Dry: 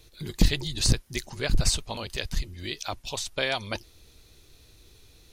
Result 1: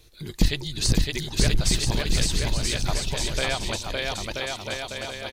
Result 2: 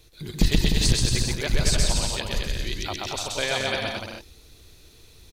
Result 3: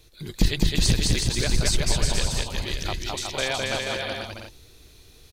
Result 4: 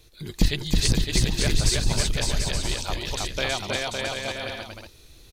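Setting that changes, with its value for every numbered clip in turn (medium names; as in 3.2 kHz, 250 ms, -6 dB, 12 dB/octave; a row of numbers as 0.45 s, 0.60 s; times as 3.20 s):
bouncing-ball echo, first gap: 560 ms, 130 ms, 210 ms, 320 ms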